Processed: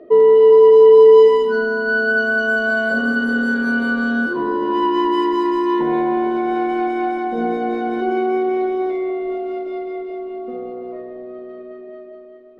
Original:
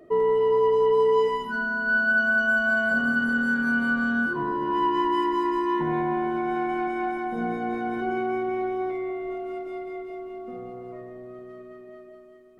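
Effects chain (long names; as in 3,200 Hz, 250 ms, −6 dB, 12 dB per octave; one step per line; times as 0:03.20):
low-pass that shuts in the quiet parts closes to 2,400 Hz, open at −22 dBFS
octave-band graphic EQ 125/250/500/4,000 Hz −10/+6/+10/+9 dB
feedback echo with a band-pass in the loop 319 ms, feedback 72%, band-pass 440 Hz, level −18 dB
level +1.5 dB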